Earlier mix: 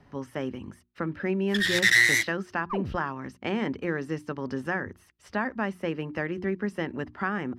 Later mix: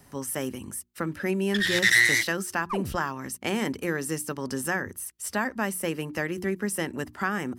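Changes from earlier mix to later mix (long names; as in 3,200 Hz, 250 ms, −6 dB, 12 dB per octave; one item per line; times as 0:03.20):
speech: remove high-frequency loss of the air 250 metres
second sound: remove moving average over 14 samples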